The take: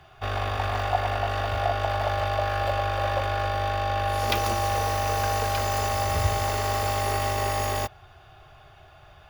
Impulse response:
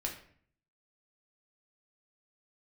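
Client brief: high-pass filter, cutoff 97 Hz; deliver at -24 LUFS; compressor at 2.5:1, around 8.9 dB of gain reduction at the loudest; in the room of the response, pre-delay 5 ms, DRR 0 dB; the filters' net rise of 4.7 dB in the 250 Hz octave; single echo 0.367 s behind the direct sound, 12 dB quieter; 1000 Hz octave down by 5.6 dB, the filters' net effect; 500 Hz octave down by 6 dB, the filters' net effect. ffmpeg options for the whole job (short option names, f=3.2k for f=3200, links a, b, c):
-filter_complex "[0:a]highpass=97,equalizer=f=250:t=o:g=9,equalizer=f=500:t=o:g=-8,equalizer=f=1k:t=o:g=-5,acompressor=threshold=-36dB:ratio=2.5,aecho=1:1:367:0.251,asplit=2[a][b];[1:a]atrim=start_sample=2205,adelay=5[c];[b][c]afir=irnorm=-1:irlink=0,volume=-1.5dB[d];[a][d]amix=inputs=2:normalize=0,volume=10dB"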